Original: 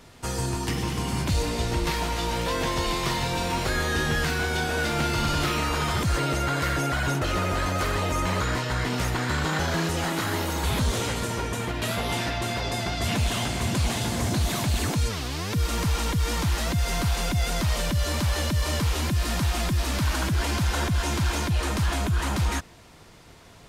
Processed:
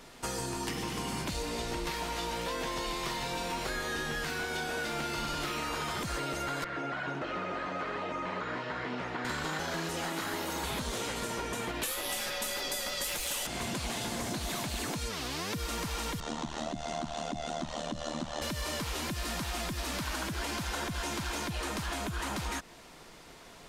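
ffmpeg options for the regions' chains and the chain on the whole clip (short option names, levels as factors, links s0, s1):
-filter_complex "[0:a]asettb=1/sr,asplit=3[s0][s1][s2];[s0]atrim=end=6.644[s3];[s1]atrim=start=6.64:end=9.25,asetpts=PTS-STARTPTS,afade=t=in:d=0.004:c=qsin,afade=t=out:st=2.606:d=0.004:c=qsin,flanger=delay=0.3:depth=7.1:regen=-71:speed=1.3:shape=triangular,acrossover=split=2700[s4][s5];[s5]acompressor=threshold=0.00501:ratio=4:attack=1:release=60[s6];[s4][s6]amix=inputs=2:normalize=0,highpass=120,lowpass=4100[s7];[s2]atrim=start=9.246[s8];[s3][s7]acrossfade=d=0.004:c1=hsin:c2=qsin[s9];[s9][s8]acrossfade=d=0.004:c1=qsin:c2=hsin,asettb=1/sr,asplit=3[s10][s11][s12];[s10]atrim=end=11.834[s13];[s11]atrim=start=11.83:end=13.47,asetpts=PTS-STARTPTS,afade=t=in:d=0.004:c=qsin,afade=t=out:st=1.636:d=0.004:c=qsin,aemphasis=mode=production:type=bsi,afreqshift=-130[s14];[s12]atrim=start=13.466[s15];[s13][s14]acrossfade=d=0.004:c1=hsin:c2=qsin[s16];[s16][s15]acrossfade=d=0.004:c1=qsin:c2=hsin,asettb=1/sr,asplit=3[s17][s18][s19];[s17]atrim=end=16.204[s20];[s18]atrim=start=16.2:end=18.42,asetpts=PTS-STARTPTS,afade=t=in:d=0.004:c=qsin,afade=t=out:st=2.216:d=0.004:c=qsin,highpass=100,equalizer=f=240:t=q:w=4:g=10,equalizer=f=420:t=q:w=4:g=-6,equalizer=f=690:t=q:w=4:g=8,equalizer=f=1600:t=q:w=4:g=-5,equalizer=f=2300:t=q:w=4:g=-9,equalizer=f=4900:t=q:w=4:g=-8,lowpass=f=6900:w=0.5412,lowpass=f=6900:w=1.3066,tremolo=f=76:d=0.889[s21];[s19]atrim=start=18.416[s22];[s20][s21]acrossfade=d=0.004:c1=hsin:c2=qsin[s23];[s23][s22]acrossfade=d=0.004:c1=qsin:c2=hsin,equalizer=f=88:w=1.1:g=-14.5,acompressor=threshold=0.0251:ratio=6"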